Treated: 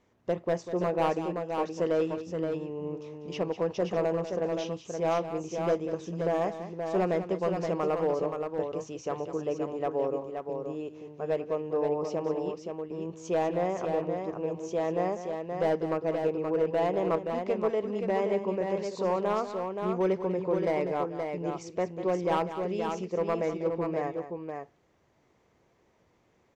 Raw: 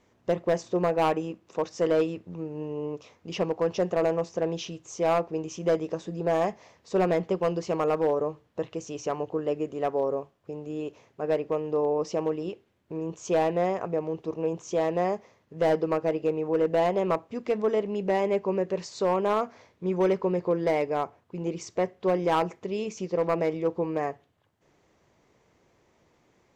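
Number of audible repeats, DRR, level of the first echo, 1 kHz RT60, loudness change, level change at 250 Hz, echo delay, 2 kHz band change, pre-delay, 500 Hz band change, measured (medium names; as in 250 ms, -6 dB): 2, no reverb, -11.5 dB, no reverb, -2.5 dB, -2.0 dB, 195 ms, -3.0 dB, no reverb, -2.5 dB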